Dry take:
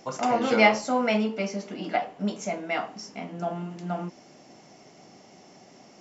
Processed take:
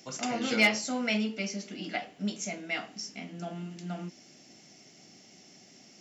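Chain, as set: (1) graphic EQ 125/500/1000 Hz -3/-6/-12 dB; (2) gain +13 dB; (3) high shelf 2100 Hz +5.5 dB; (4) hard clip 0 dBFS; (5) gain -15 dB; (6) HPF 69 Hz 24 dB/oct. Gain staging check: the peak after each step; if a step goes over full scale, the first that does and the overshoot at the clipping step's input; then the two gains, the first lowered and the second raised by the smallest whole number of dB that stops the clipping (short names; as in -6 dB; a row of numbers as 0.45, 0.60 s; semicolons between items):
-9.5, +3.5, +6.0, 0.0, -15.0, -12.5 dBFS; step 2, 6.0 dB; step 2 +7 dB, step 5 -9 dB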